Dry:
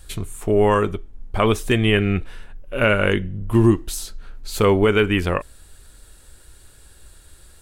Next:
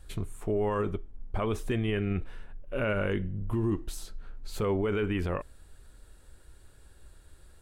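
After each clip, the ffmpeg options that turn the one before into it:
-af "highshelf=f=2.3k:g=-9.5,alimiter=limit=-15dB:level=0:latency=1:release=25,volume=-5.5dB"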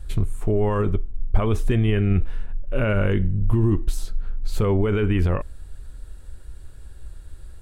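-af "lowshelf=f=140:g=12,volume=4.5dB"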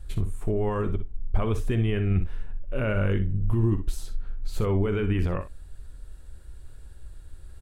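-af "areverse,acompressor=mode=upward:threshold=-33dB:ratio=2.5,areverse,aecho=1:1:51|62:0.158|0.266,volume=-5dB"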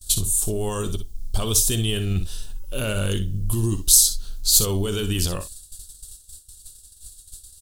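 -af "agate=range=-33dB:threshold=-31dB:ratio=3:detection=peak,aexciter=amount=14.1:drive=9.6:freq=3.5k"

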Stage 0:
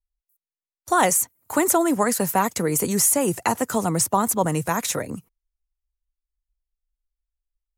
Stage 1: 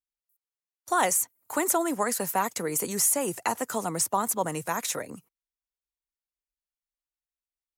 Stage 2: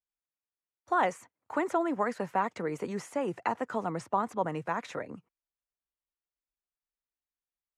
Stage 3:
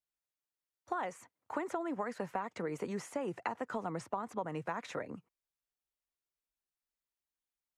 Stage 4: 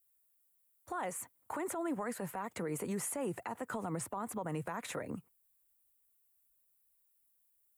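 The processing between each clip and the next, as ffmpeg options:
-af "highpass=f=170:p=1,lowshelf=f=310:g=-5.5,volume=-4.5dB"
-af "lowpass=2.2k,volume=-2dB"
-af "acompressor=threshold=-31dB:ratio=10,volume=-1.5dB"
-af "aexciter=amount=3:drive=9.9:freq=8k,lowshelf=f=150:g=7.5,alimiter=level_in=7.5dB:limit=-24dB:level=0:latency=1:release=67,volume=-7.5dB,volume=2.5dB"

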